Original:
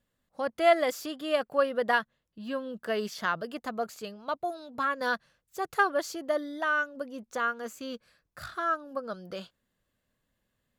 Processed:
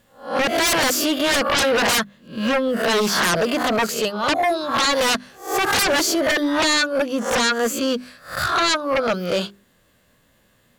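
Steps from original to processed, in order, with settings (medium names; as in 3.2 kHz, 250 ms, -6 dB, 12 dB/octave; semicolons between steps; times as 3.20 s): reverse spectral sustain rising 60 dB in 0.38 s; hum notches 50/100/150/200/250/300/350/400 Hz; sine folder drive 19 dB, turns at -11 dBFS; bass shelf 60 Hz -7 dB; trim -4 dB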